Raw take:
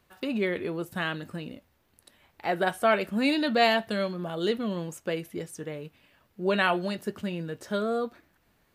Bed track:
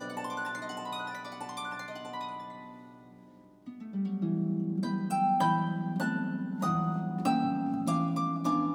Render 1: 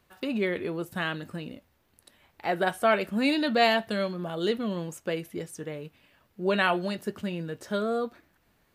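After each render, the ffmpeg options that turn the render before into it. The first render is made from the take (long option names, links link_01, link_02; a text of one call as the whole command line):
ffmpeg -i in.wav -af anull out.wav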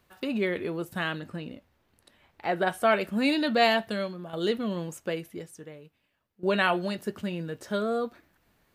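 ffmpeg -i in.wav -filter_complex "[0:a]asettb=1/sr,asplit=3[link_01][link_02][link_03];[link_01]atrim=end=1.194[link_04];[link_02]atrim=start=1.19:end=2.71,asetpts=PTS-STARTPTS,afade=type=in:duration=0.004:curve=qsin,afade=type=out:start_time=1.516:duration=0.004:curve=qsin,highshelf=frequency=7100:gain=-9.5[link_05];[link_03]atrim=start=2.706[link_06];[link_04][link_05]acrossfade=duration=0.004:curve1=hsin:curve2=qsin[link_07];[link_07][link_06]acrossfade=duration=0.004:curve1=qsin:curve2=hsin,asplit=3[link_08][link_09][link_10];[link_08]atrim=end=4.33,asetpts=PTS-STARTPTS,afade=type=out:start_time=3.81:duration=0.52:silence=0.375837[link_11];[link_09]atrim=start=4.33:end=6.43,asetpts=PTS-STARTPTS,afade=type=in:duration=0.004:curve=hsin:silence=0.375837,afade=type=out:start_time=0.71:duration=1.39:curve=qua:silence=0.16788[link_12];[link_10]atrim=start=6.43,asetpts=PTS-STARTPTS,afade=type=in:duration=0.004:curve=hsin:silence=0.16788[link_13];[link_11][link_12][link_13]concat=n=3:v=0:a=1" out.wav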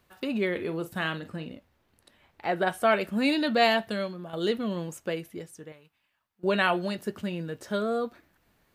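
ffmpeg -i in.wav -filter_complex "[0:a]asettb=1/sr,asplit=3[link_01][link_02][link_03];[link_01]atrim=end=0.514[link_04];[link_02]atrim=start=0.51:end=1.53,asetpts=PTS-STARTPTS,afade=type=in:duration=0.004:curve=qsin,afade=type=out:start_time=1.016:duration=0.004:curve=qsin,asplit=2[link_05][link_06];[link_06]adelay=43,volume=-12dB[link_07];[link_05][link_07]amix=inputs=2:normalize=0,atrim=end_sample=44982[link_08];[link_03]atrim=start=1.526[link_09];[link_04][link_08]acrossfade=duration=0.004:curve1=hsin:curve2=qsin[link_10];[link_10][link_09]acrossfade=duration=0.004:curve1=qsin:curve2=hsin,asettb=1/sr,asplit=3[link_11][link_12][link_13];[link_11]atrim=end=5.724[link_14];[link_12]atrim=start=5.72:end=6.44,asetpts=PTS-STARTPTS,afade=type=in:duration=0.004:curve=qsin,afade=type=out:start_time=0.716:duration=0.004:curve=qsin,lowshelf=frequency=670:width_type=q:width=1.5:gain=-8[link_15];[link_13]atrim=start=6.436[link_16];[link_14][link_15]acrossfade=duration=0.004:curve1=hsin:curve2=qsin[link_17];[link_17][link_16]acrossfade=duration=0.004:curve1=qsin:curve2=hsin" out.wav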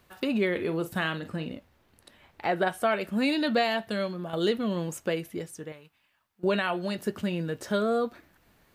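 ffmpeg -i in.wav -filter_complex "[0:a]asplit=2[link_01][link_02];[link_02]acompressor=threshold=-34dB:ratio=6,volume=-3dB[link_03];[link_01][link_03]amix=inputs=2:normalize=0,alimiter=limit=-15dB:level=0:latency=1:release=476" out.wav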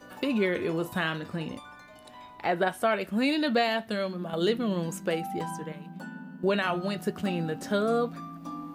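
ffmpeg -i in.wav -i bed.wav -filter_complex "[1:a]volume=-10dB[link_01];[0:a][link_01]amix=inputs=2:normalize=0" out.wav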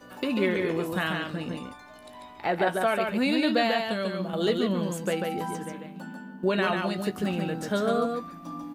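ffmpeg -i in.wav -filter_complex "[0:a]asplit=2[link_01][link_02];[link_02]adelay=16,volume=-12dB[link_03];[link_01][link_03]amix=inputs=2:normalize=0,aecho=1:1:143:0.631" out.wav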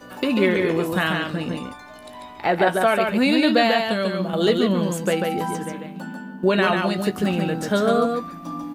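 ffmpeg -i in.wav -af "volume=6.5dB" out.wav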